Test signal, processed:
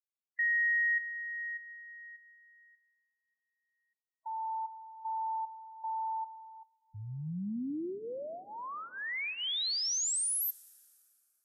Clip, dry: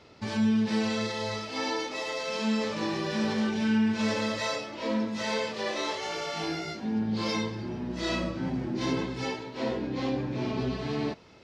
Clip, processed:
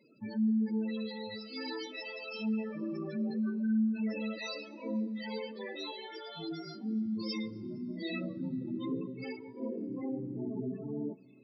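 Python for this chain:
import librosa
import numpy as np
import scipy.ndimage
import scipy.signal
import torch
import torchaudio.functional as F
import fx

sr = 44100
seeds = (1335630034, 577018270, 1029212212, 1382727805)

y = scipy.signal.sosfilt(scipy.signal.butter(2, 190.0, 'highpass', fs=sr, output='sos'), x)
y = fx.spec_gate(y, sr, threshold_db=-15, keep='strong')
y = fx.peak_eq(y, sr, hz=790.0, db=-8.5, octaves=2.4)
y = fx.spec_topn(y, sr, count=16)
y = fx.rev_plate(y, sr, seeds[0], rt60_s=3.7, hf_ratio=0.6, predelay_ms=0, drr_db=19.5)
y = fx.notch_cascade(y, sr, direction='falling', hz=0.24)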